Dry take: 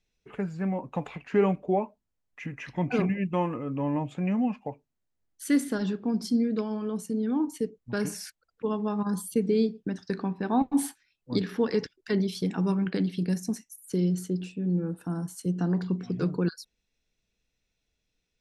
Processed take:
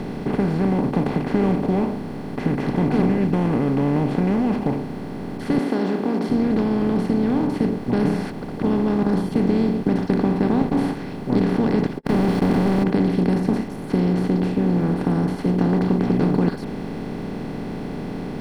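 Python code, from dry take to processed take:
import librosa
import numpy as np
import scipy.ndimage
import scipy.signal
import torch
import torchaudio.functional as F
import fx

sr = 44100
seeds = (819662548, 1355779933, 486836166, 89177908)

y = fx.highpass(x, sr, hz=370.0, slope=24, at=(5.58, 6.3))
y = fx.quant_companded(y, sr, bits=2, at=(11.97, 12.82), fade=0.02)
y = fx.bin_compress(y, sr, power=0.2)
y = fx.bass_treble(y, sr, bass_db=12, treble_db=-14)
y = F.gain(torch.from_numpy(y), -6.5).numpy()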